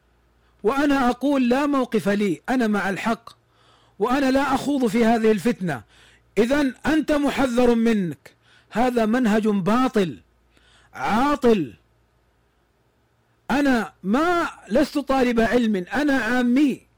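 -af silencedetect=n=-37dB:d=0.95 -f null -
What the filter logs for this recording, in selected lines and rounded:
silence_start: 11.74
silence_end: 13.50 | silence_duration: 1.76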